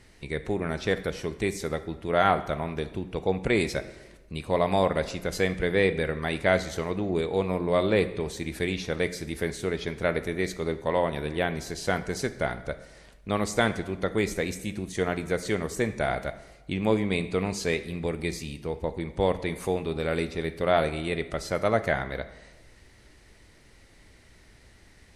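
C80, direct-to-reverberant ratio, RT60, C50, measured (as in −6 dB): 15.5 dB, 11.0 dB, 1.2 s, 13.5 dB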